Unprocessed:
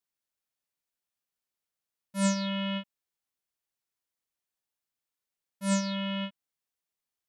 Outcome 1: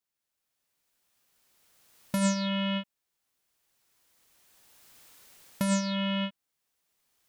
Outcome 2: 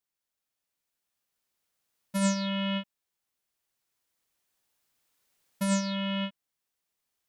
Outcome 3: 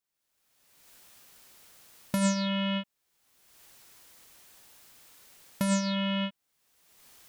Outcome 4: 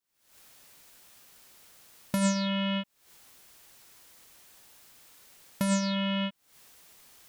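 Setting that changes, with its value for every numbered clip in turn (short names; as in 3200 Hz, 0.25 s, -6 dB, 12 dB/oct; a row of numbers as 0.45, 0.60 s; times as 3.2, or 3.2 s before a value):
recorder AGC, rising by: 14, 5.1, 36, 90 dB/s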